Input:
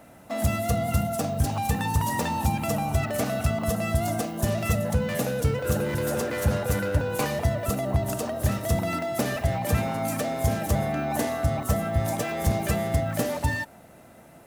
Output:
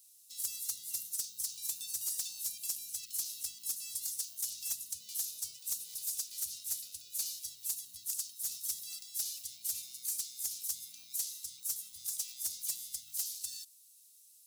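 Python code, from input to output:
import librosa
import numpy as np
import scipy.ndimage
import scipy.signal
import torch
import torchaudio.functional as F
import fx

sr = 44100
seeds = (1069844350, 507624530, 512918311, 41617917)

y = scipy.signal.sosfilt(scipy.signal.cheby2(4, 50, 1800.0, 'highpass', fs=sr, output='sos'), x)
y = 10.0 ** (-28.0 / 20.0) * np.tanh(y / 10.0 ** (-28.0 / 20.0))
y = F.gain(torch.from_numpy(y), 2.5).numpy()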